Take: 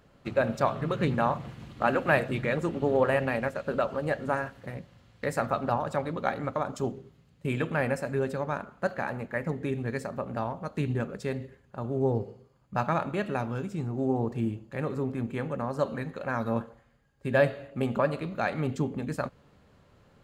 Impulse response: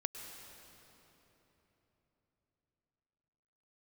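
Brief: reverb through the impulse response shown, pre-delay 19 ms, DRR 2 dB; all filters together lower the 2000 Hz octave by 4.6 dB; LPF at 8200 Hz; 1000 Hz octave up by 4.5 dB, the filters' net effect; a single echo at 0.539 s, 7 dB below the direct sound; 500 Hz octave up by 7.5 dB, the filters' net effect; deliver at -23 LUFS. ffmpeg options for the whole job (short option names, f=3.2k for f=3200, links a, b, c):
-filter_complex "[0:a]lowpass=8.2k,equalizer=f=500:t=o:g=8,equalizer=f=1k:t=o:g=5,equalizer=f=2k:t=o:g=-9,aecho=1:1:539:0.447,asplit=2[a][b];[1:a]atrim=start_sample=2205,adelay=19[c];[b][c]afir=irnorm=-1:irlink=0,volume=-2dB[d];[a][d]amix=inputs=2:normalize=0,volume=-0.5dB"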